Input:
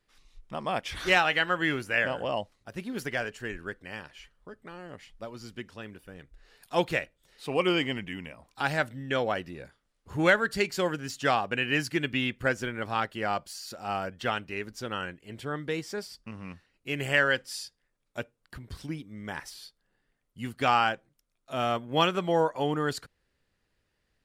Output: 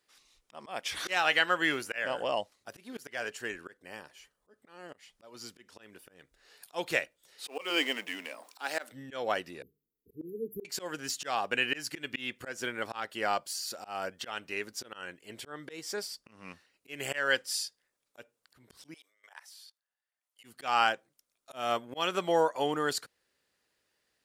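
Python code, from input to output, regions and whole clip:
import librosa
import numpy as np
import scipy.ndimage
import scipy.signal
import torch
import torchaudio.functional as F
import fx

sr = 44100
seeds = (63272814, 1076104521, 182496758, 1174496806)

y = fx.chain(x, sr, fx.peak_eq(hz=2800.0, db=-7.5, octaves=2.7),
    fx.notch(hz=1400.0, q=27.0), at=(3.77, 4.54))
y = fx.chain(y, sr, fx.law_mismatch(coded='mu'),
    fx.highpass(hz=260.0, slope=24),
    fx.notch(hz=360.0, q=10.0), at=(7.47, 8.92))
y = fx.chain(y, sr, fx.brickwall_bandstop(low_hz=480.0, high_hz=11000.0),
    fx.hum_notches(base_hz=50, count=4), at=(9.62, 10.65))
y = fx.chain(y, sr, fx.highpass(hz=630.0, slope=24),
    fx.level_steps(step_db=19), at=(18.94, 20.44))
y = fx.highpass(y, sr, hz=140.0, slope=6)
y = fx.auto_swell(y, sr, attack_ms=208.0)
y = fx.bass_treble(y, sr, bass_db=-9, treble_db=6)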